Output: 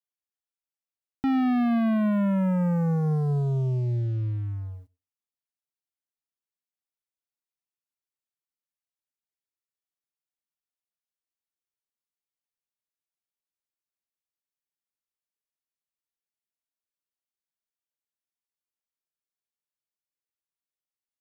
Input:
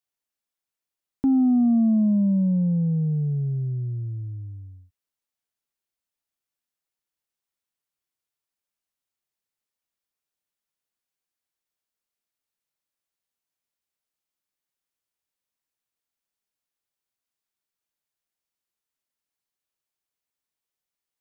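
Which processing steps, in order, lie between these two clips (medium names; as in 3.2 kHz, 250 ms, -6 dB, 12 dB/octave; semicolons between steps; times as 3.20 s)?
waveshaping leveller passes 3; reverberation RT60 0.25 s, pre-delay 82 ms, DRR 25.5 dB; trim -5.5 dB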